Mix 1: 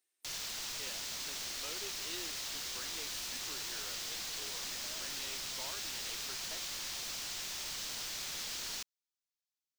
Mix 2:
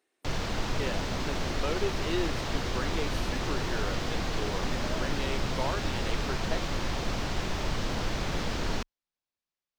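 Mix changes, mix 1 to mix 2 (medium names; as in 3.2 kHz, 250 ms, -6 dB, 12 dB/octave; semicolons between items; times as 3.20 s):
background: add tilt EQ -2 dB/octave; master: remove pre-emphasis filter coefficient 0.9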